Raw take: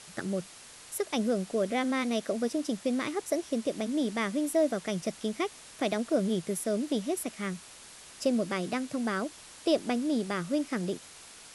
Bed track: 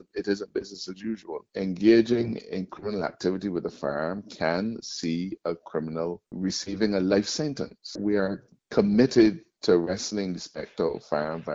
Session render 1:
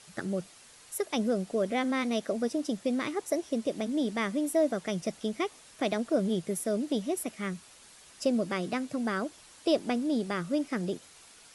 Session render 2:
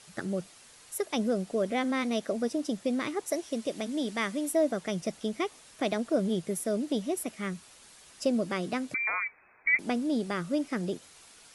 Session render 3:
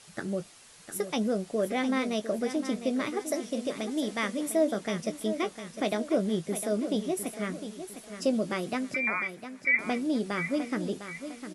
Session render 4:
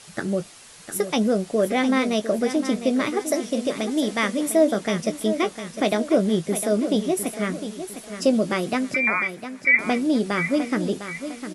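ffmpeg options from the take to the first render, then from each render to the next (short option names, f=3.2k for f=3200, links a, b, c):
-af "afftdn=nr=6:nf=-50"
-filter_complex "[0:a]asettb=1/sr,asplit=3[a][b][c];[a]atrim=end=3.274[d];[b]atrim=start=3.27:end=4.52,asetpts=PTS-STARTPTS,afade=t=in:d=0.004:c=qsin,afade=t=out:st=1.246:d=0.004:c=qsin,tiltshelf=f=970:g=-3[e];[c]atrim=start=4.516[f];[d][e]acrossfade=d=0.004:c1=hsin:c2=qsin[g];[g][f]acrossfade=d=0.004:c1=qsin:c2=hsin,asettb=1/sr,asplit=3[h][i][j];[h]atrim=end=8.944[k];[i]atrim=start=8.94:end=9.79,asetpts=PTS-STARTPTS,afade=t=in:d=0.004:c=qsin,afade=t=out:st=0.846:d=0.004:c=qsin,lowpass=f=2.2k:t=q:w=0.5098,lowpass=f=2.2k:t=q:w=0.6013,lowpass=f=2.2k:t=q:w=0.9,lowpass=f=2.2k:t=q:w=2.563,afreqshift=-2600[l];[j]atrim=start=9.786[m];[k][l]acrossfade=d=0.004:c1=hsin:c2=qsin[n];[n][m]acrossfade=d=0.004:c1=qsin:c2=hsin"
-filter_complex "[0:a]asplit=2[a][b];[b]adelay=19,volume=-11dB[c];[a][c]amix=inputs=2:normalize=0,asplit=2[d][e];[e]aecho=0:1:705|1410|2115|2820:0.299|0.122|0.0502|0.0206[f];[d][f]amix=inputs=2:normalize=0"
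-af "volume=7.5dB"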